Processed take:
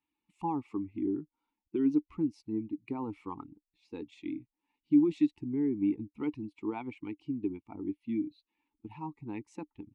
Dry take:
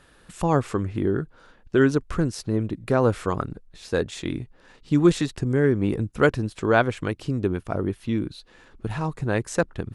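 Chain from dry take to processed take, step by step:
spectral dynamics exaggerated over time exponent 1.5
brickwall limiter −16.5 dBFS, peak gain reduction 10 dB
formant filter u
level +5.5 dB

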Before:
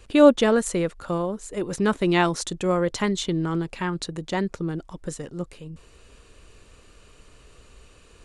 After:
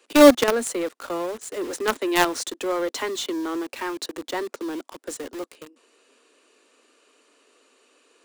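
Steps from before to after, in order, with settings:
Butterworth high-pass 240 Hz 96 dB per octave
in parallel at −5 dB: log-companded quantiser 2 bits
on the sum: level −4.5 dB

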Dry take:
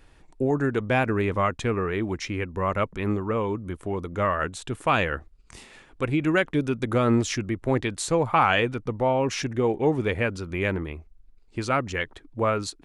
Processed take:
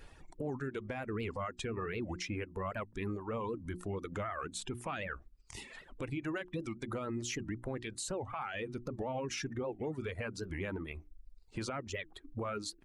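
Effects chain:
spectral magnitudes quantised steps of 15 dB
reverb reduction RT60 0.92 s
downward compressor 4 to 1, threshold −34 dBFS, peak gain reduction 15 dB
mains-hum notches 60/120/180/240/300/360 Hz
brickwall limiter −30.5 dBFS, peak gain reduction 10 dB
wow of a warped record 78 rpm, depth 250 cents
level +1 dB

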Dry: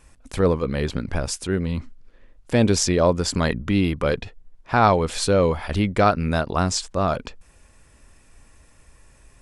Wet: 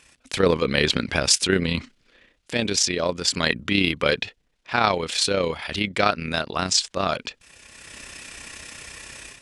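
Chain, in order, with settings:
meter weighting curve D
automatic gain control gain up to 15 dB
amplitude modulation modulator 32 Hz, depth 35%

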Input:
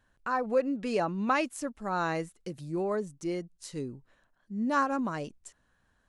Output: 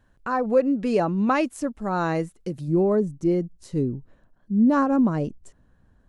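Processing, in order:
tilt shelving filter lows +4.5 dB, about 730 Hz, from 0:02.67 lows +9.5 dB
level +5.5 dB

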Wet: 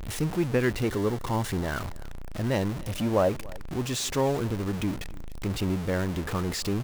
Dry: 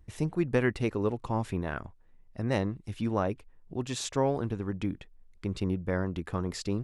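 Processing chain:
converter with a step at zero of −30 dBFS
0:00.84–0:01.79: notch filter 2,500 Hz, Q 8.2
0:02.83–0:03.29: parametric band 570 Hz +8.5 dB 0.52 octaves
single-tap delay 285 ms −22.5 dB

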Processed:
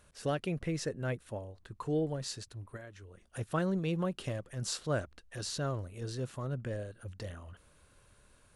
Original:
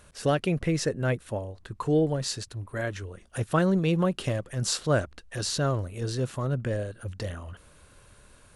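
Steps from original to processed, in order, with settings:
0:02.76–0:03.27: downward compressor 3 to 1, threshold −40 dBFS, peak gain reduction 10.5 dB
level −8.5 dB

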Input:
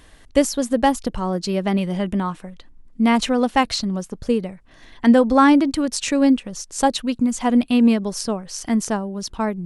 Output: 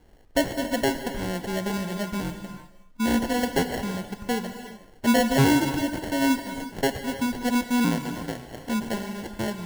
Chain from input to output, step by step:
decimation without filtering 36×
0:07.84–0:08.66: ring modulation 57 Hz
reverb whose tail is shaped and stops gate 400 ms flat, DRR 7.5 dB
level −7 dB

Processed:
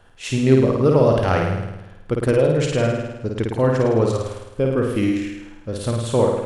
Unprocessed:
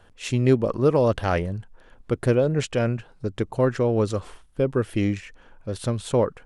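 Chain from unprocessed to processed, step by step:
flutter between parallel walls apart 9.1 metres, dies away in 0.99 s
level +1.5 dB

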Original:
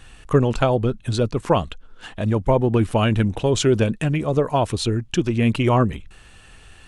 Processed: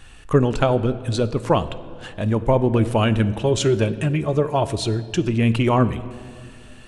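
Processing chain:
0:03.25–0:05.28: notch comb filter 250 Hz
on a send: convolution reverb RT60 2.2 s, pre-delay 3 ms, DRR 12.5 dB

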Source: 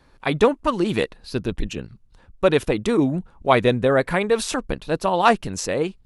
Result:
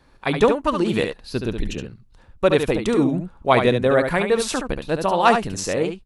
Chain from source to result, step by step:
single-tap delay 71 ms −6.5 dB

